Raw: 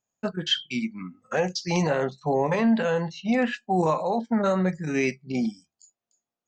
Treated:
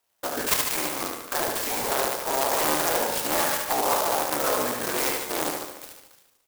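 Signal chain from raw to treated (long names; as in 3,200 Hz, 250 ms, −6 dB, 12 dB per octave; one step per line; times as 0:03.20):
sub-harmonics by changed cycles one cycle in 3, inverted
high-pass filter 630 Hz 12 dB per octave
in parallel at +0.5 dB: compressor whose output falls as the input rises −40 dBFS, ratio −1
0:01.38–0:01.92: on the sum: hard clipping −25 dBFS, distortion −18 dB
repeating echo 73 ms, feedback 60%, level −3.5 dB
on a send at −13.5 dB: convolution reverb RT60 1.1 s, pre-delay 48 ms
on the sum: converter with an unsteady clock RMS 0.1 ms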